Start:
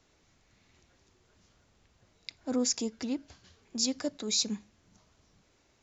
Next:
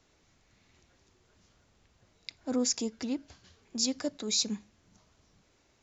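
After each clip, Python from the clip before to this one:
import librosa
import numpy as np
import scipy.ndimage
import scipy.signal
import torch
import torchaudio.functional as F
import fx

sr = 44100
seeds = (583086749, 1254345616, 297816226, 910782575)

y = x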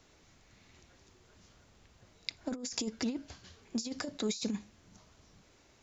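y = fx.over_compress(x, sr, threshold_db=-34.0, ratio=-0.5)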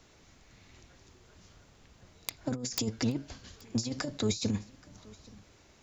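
y = fx.octave_divider(x, sr, octaves=1, level_db=-3.0)
y = (np.mod(10.0 ** (20.5 / 20.0) * y + 1.0, 2.0) - 1.0) / 10.0 ** (20.5 / 20.0)
y = y + 10.0 ** (-23.5 / 20.0) * np.pad(y, (int(827 * sr / 1000.0), 0))[:len(y)]
y = F.gain(torch.from_numpy(y), 3.0).numpy()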